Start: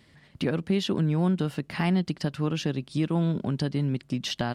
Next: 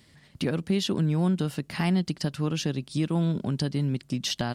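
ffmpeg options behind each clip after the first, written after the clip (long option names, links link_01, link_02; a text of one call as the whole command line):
ffmpeg -i in.wav -af "bass=frequency=250:gain=2,treble=frequency=4000:gain=8,volume=-1.5dB" out.wav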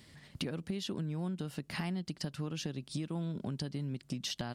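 ffmpeg -i in.wav -af "acompressor=threshold=-35dB:ratio=6" out.wav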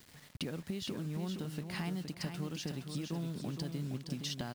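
ffmpeg -i in.wav -af "acrusher=bits=8:mix=0:aa=0.000001,aecho=1:1:467|934|1401|1868:0.473|0.132|0.0371|0.0104,volume=-2dB" out.wav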